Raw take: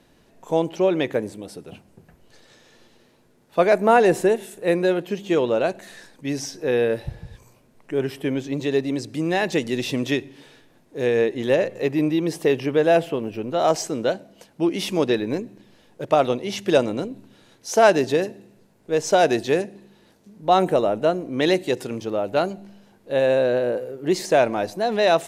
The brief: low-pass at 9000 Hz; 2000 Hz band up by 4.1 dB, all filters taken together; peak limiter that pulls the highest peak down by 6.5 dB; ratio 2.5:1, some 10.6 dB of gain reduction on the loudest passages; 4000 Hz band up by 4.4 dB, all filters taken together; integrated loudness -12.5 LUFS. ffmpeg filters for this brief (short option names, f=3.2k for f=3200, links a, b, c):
-af "lowpass=9k,equalizer=f=2k:t=o:g=4.5,equalizer=f=4k:t=o:g=4,acompressor=threshold=-27dB:ratio=2.5,volume=18dB,alimiter=limit=-1dB:level=0:latency=1"